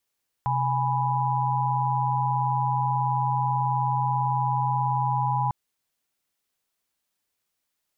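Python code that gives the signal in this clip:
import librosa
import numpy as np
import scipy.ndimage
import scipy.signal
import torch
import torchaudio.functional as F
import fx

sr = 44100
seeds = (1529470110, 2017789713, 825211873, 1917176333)

y = fx.chord(sr, length_s=5.05, notes=(48, 80, 83), wave='sine', level_db=-26.0)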